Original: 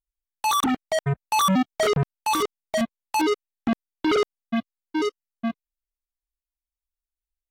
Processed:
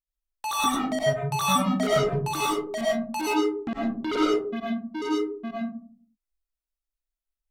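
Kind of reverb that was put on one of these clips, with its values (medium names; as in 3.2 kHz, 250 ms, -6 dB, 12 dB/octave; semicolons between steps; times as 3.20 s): algorithmic reverb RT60 0.52 s, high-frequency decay 0.3×, pre-delay 65 ms, DRR -5.5 dB; trim -8 dB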